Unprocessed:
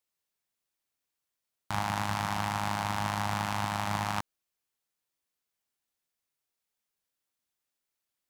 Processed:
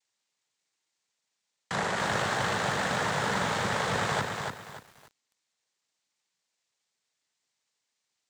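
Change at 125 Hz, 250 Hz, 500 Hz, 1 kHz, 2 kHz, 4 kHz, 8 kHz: -0.5, +1.5, +10.0, +1.0, +6.5, +5.0, +4.5 dB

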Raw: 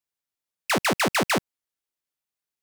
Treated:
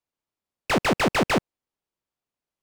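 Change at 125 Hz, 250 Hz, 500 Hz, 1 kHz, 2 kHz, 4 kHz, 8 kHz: +4.0, +3.0, +2.5, +0.5, -1.0, -1.5, -5.5 dB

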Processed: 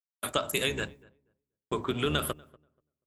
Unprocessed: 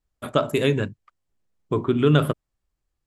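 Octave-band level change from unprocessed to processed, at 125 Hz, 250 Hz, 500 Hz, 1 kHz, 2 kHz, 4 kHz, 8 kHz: -14.5 dB, -12.5 dB, -10.0 dB, -5.5 dB, -2.5 dB, +0.5 dB, n/a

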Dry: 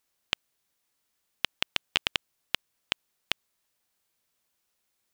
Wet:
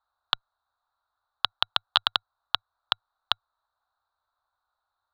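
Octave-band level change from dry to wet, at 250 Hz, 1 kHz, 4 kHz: under -10 dB, +11.0 dB, +5.0 dB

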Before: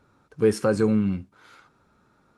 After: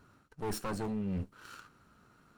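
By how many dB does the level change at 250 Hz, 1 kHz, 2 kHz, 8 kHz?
-13.5, -5.5, -11.5, -6.0 dB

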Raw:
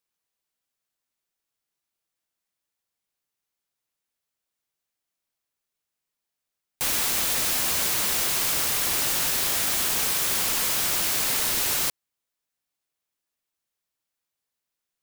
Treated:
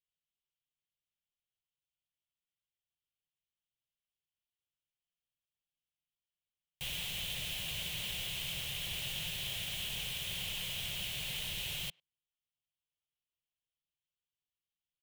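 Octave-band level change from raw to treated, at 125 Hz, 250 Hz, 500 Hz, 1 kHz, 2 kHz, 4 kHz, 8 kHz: -4.5, -13.5, -17.5, -21.5, -11.5, -8.0, -20.0 dB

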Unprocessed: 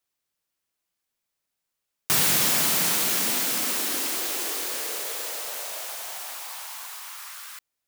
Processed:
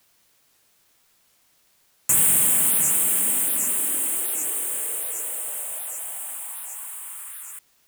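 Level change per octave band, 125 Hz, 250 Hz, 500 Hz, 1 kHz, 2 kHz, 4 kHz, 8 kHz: -2.5, -3.5, -4.5, -6.0, -6.0, -11.0, +6.0 dB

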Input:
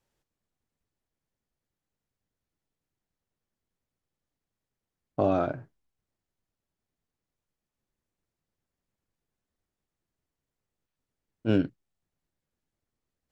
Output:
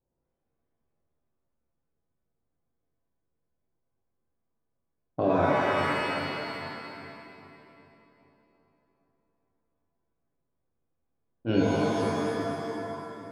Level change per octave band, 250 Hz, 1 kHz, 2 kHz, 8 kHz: +3.0 dB, +8.5 dB, +14.0 dB, n/a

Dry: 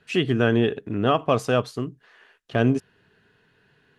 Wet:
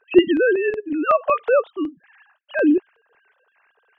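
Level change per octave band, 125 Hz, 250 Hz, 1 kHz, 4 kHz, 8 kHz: under -20 dB, +4.0 dB, +3.5 dB, n/a, under -25 dB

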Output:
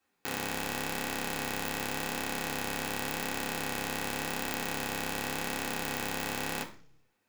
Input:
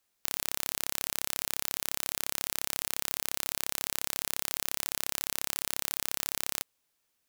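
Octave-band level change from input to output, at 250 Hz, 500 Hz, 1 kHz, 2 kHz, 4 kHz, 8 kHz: +12.5, +9.0, +7.5, +6.0, -1.5, -5.5 dB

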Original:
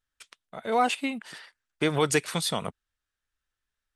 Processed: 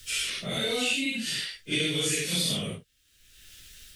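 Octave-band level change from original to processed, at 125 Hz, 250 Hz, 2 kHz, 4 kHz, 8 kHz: -0.5, -1.0, +2.0, +7.5, +4.5 dB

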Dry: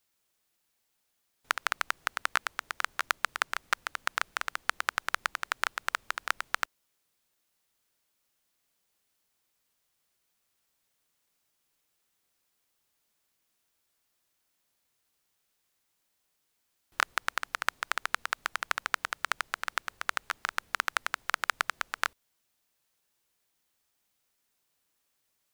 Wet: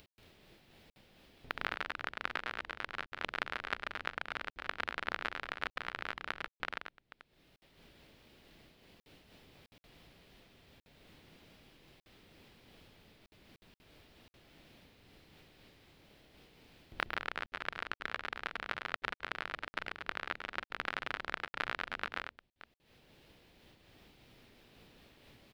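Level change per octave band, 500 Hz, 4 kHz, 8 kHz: 0.0, -6.5, -21.0 dB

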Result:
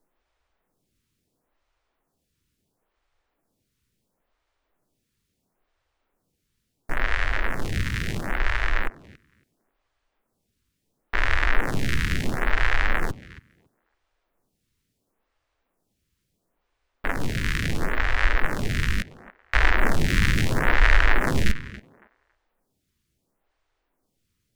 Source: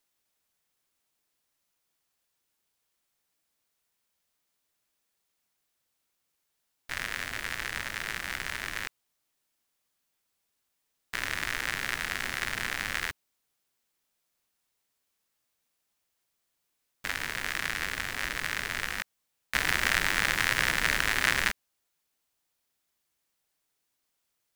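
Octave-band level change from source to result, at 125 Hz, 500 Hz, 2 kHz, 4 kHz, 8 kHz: +17.5, +10.5, +3.0, -1.0, -4.0 dB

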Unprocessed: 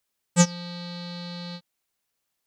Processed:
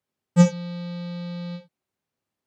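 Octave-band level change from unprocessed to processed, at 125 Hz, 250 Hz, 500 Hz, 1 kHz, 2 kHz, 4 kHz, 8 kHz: +5.5, +5.5, +4.0, -1.5, -3.5, -7.0, -10.5 dB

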